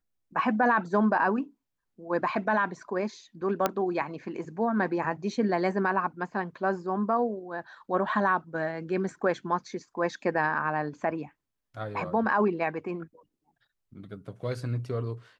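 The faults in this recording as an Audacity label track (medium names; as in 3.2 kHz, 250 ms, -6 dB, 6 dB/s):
3.660000	3.660000	pop -10 dBFS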